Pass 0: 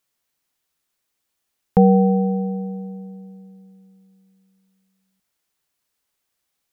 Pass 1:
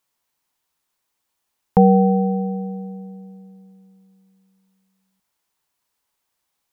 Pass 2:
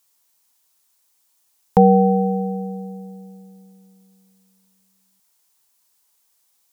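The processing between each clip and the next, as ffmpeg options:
-af "equalizer=f=940:t=o:w=0.51:g=7.5"
-af "bass=f=250:g=-4,treble=f=4k:g=11,volume=2dB"

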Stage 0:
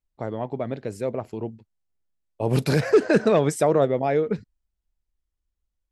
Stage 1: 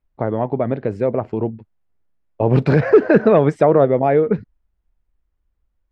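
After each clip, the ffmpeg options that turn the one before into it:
-filter_complex "[0:a]asplit=2[a][b];[b]acompressor=threshold=-27dB:ratio=6,volume=1dB[c];[a][c]amix=inputs=2:normalize=0,lowpass=1.9k,volume=4dB"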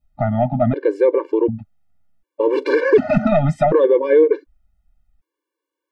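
-af "apsyclip=12.5dB,adynamicequalizer=threshold=0.112:dfrequency=1500:dqfactor=0.83:tfrequency=1500:tqfactor=0.83:attack=5:release=100:ratio=0.375:range=1.5:mode=cutabove:tftype=bell,afftfilt=real='re*gt(sin(2*PI*0.67*pts/sr)*(1-2*mod(floor(b*sr/1024/300),2)),0)':imag='im*gt(sin(2*PI*0.67*pts/sr)*(1-2*mod(floor(b*sr/1024/300),2)),0)':win_size=1024:overlap=0.75,volume=-5.5dB"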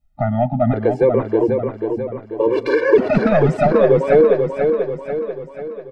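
-af "aecho=1:1:489|978|1467|1956|2445|2934:0.531|0.271|0.138|0.0704|0.0359|0.0183"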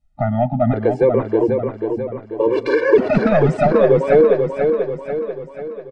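-af "aresample=22050,aresample=44100"

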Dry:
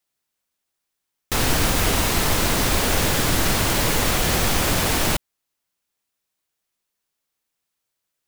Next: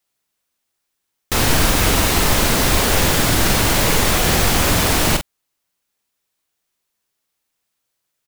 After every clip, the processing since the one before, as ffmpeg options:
-filter_complex "[0:a]asplit=2[a][b];[b]adelay=44,volume=-7dB[c];[a][c]amix=inputs=2:normalize=0,volume=3.5dB"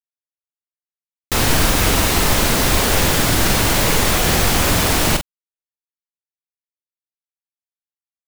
-af "acrusher=bits=6:dc=4:mix=0:aa=0.000001"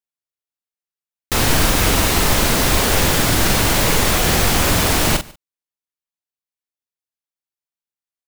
-af "aecho=1:1:146:0.0668"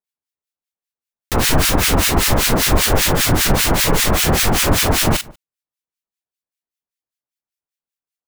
-filter_complex "[0:a]acrossover=split=1400[a][b];[a]aeval=exprs='val(0)*(1-1/2+1/2*cos(2*PI*5.1*n/s))':c=same[c];[b]aeval=exprs='val(0)*(1-1/2-1/2*cos(2*PI*5.1*n/s))':c=same[d];[c][d]amix=inputs=2:normalize=0,volume=5dB"

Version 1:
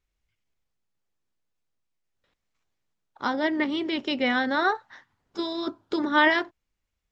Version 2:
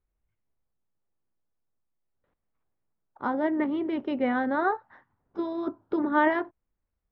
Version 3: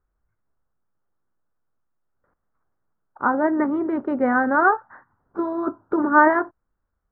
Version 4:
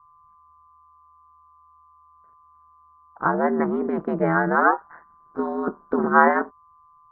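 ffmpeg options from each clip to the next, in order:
-af "lowpass=1.2k"
-af "highshelf=f=2.1k:t=q:w=3:g=-13.5,volume=5dB"
-af "aeval=exprs='val(0)+0.00282*sin(2*PI*1100*n/s)':c=same,aeval=exprs='val(0)*sin(2*PI*79*n/s)':c=same,volume=2dB"

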